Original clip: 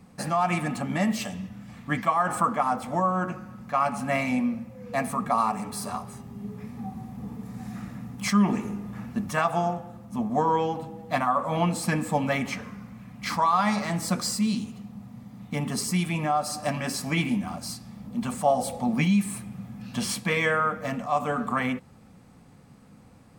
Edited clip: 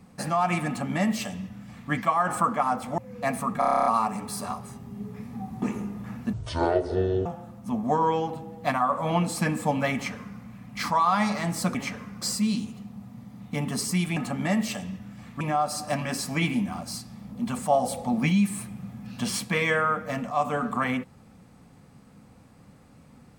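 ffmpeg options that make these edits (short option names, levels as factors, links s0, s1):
-filter_complex "[0:a]asplit=18[s0][s1][s2][s3][s4][s5][s6][s7][s8][s9][s10][s11][s12][s13][s14][s15][s16][s17];[s0]atrim=end=2.982[s18];[s1]atrim=start=4.688:end=5.332[s19];[s2]atrim=start=5.298:end=5.332[s20];[s3]atrim=start=5.298:end=5.332[s21];[s4]atrim=start=5.298:end=5.332[s22];[s5]atrim=start=5.298:end=5.332[s23];[s6]atrim=start=5.298:end=5.332[s24];[s7]atrim=start=5.298:end=5.332[s25];[s8]atrim=start=5.298:end=5.332[s26];[s9]atrim=start=5.298:end=5.332[s27];[s10]atrim=start=5.298:end=7.062[s28];[s11]atrim=start=8.508:end=9.224[s29];[s12]atrim=start=9.22:end=9.72,asetpts=PTS-STARTPTS,asetrate=23814,aresample=44100,atrim=end_sample=40833,asetpts=PTS-STARTPTS[s30];[s13]atrim=start=9.716:end=14.212[s31];[s14]atrim=start=12.398:end=12.872[s32];[s15]atrim=start=14.208:end=16.162[s33];[s16]atrim=start=0.668:end=1.912[s34];[s17]atrim=start=16.158[s35];[s18][s19]acrossfade=d=0.004:c1=hsin:c2=hsin[s36];[s36][s20]acrossfade=d=0.004:c1=hsin:c2=hsin[s37];[s37][s21]acrossfade=d=0.004:c1=hsin:c2=hsin[s38];[s38][s22]acrossfade=d=0.004:c1=hsin:c2=hsin[s39];[s39][s23]acrossfade=d=0.004:c1=hsin:c2=hsin[s40];[s40][s24]acrossfade=d=0.004:c1=hsin:c2=hsin[s41];[s41][s25]acrossfade=d=0.004:c1=hsin:c2=hsin[s42];[s42][s26]acrossfade=d=0.004:c1=hsin:c2=hsin[s43];[s43][s27]acrossfade=d=0.004:c1=hsin:c2=hsin[s44];[s44][s28]acrossfade=d=0.004:c1=hsin:c2=hsin[s45];[s45][s29]acrossfade=d=0.004:c1=hsin:c2=hsin[s46];[s46][s30]acrossfade=d=0.004:c1=hsin:c2=hsin[s47];[s47][s31]acrossfade=d=0.004:c1=hsin:c2=hsin[s48];[s48][s32]acrossfade=d=0.004:c1=hsin:c2=hsin[s49];[s49][s33]acrossfade=d=0.004:c1=hsin:c2=hsin[s50];[s50][s34]acrossfade=d=0.004:c1=hsin:c2=hsin[s51];[s51][s35]acrossfade=d=0.004:c1=hsin:c2=hsin"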